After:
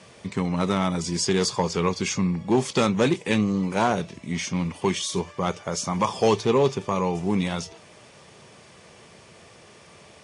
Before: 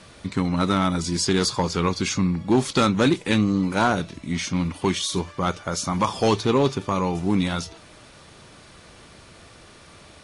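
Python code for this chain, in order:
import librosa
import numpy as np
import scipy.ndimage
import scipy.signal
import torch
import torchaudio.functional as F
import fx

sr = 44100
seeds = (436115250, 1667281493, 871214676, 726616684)

y = fx.cabinet(x, sr, low_hz=120.0, low_slope=12, high_hz=9300.0, hz=(290.0, 430.0, 1400.0, 4000.0), db=(-8, 3, -7, -7))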